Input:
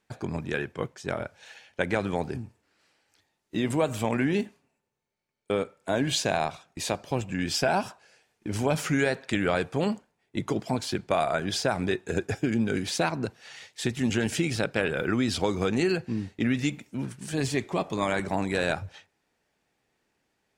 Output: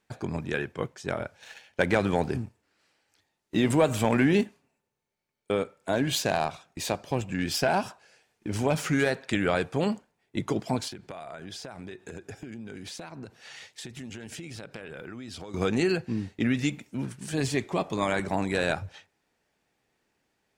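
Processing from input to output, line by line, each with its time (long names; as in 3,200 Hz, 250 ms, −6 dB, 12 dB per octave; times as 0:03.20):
0:01.37–0:04.44: leveller curve on the samples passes 1
0:05.93–0:09.11: phase distortion by the signal itself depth 0.057 ms
0:10.88–0:15.54: downward compressor 8 to 1, threshold −37 dBFS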